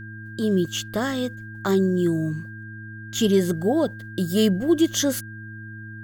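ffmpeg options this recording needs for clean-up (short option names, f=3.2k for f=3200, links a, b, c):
-af "bandreject=f=108.5:t=h:w=4,bandreject=f=217:t=h:w=4,bandreject=f=325.5:t=h:w=4,bandreject=f=1.6k:w=30"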